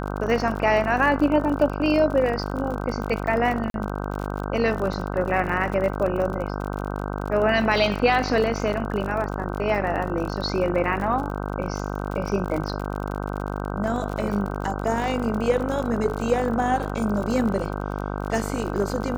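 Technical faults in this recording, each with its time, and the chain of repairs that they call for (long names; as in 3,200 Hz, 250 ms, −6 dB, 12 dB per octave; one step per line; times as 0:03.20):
mains buzz 50 Hz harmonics 31 −29 dBFS
surface crackle 48 per second −29 dBFS
0:03.70–0:03.74: drop-out 42 ms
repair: click removal
hum removal 50 Hz, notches 31
repair the gap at 0:03.70, 42 ms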